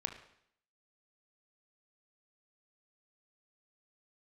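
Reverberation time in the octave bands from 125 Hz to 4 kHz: 0.65 s, 0.70 s, 0.65 s, 0.70 s, 0.70 s, 0.70 s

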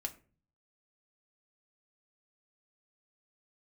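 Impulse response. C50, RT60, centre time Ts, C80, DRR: 17.0 dB, 0.40 s, 6 ms, 21.0 dB, 3.0 dB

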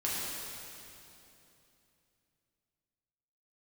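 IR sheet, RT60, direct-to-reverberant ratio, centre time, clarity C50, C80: 3.0 s, -7.5 dB, 177 ms, -3.0 dB, -1.5 dB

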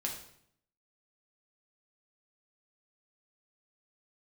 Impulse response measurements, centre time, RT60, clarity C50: 27 ms, 0.65 s, 6.0 dB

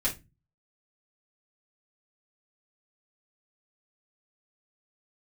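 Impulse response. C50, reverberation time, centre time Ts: 12.5 dB, 0.25 s, 15 ms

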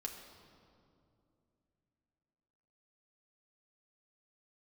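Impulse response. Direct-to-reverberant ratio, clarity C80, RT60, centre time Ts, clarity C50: 1.0 dB, 7.0 dB, 2.6 s, 47 ms, 6.0 dB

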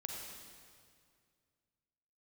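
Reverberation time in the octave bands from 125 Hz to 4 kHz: 2.6 s, 2.4 s, 2.2 s, 2.1 s, 2.0 s, 1.8 s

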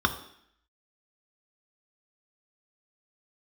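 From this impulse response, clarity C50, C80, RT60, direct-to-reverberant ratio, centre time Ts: 12.0 dB, 14.5 dB, 0.65 s, 5.0 dB, 9 ms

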